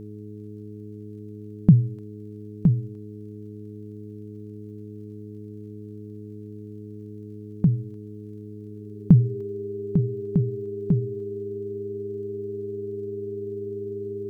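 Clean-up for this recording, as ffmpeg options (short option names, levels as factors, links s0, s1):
-af "adeclick=t=4,bandreject=f=105.1:t=h:w=4,bandreject=f=210.2:t=h:w=4,bandreject=f=315.3:t=h:w=4,bandreject=f=420.4:t=h:w=4,bandreject=f=400:w=30"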